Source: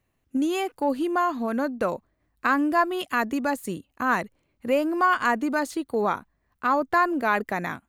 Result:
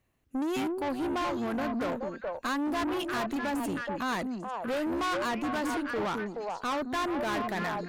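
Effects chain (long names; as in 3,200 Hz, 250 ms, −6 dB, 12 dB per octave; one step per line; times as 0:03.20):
echo through a band-pass that steps 212 ms, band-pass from 260 Hz, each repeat 1.4 octaves, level −1.5 dB
tube saturation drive 28 dB, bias 0.3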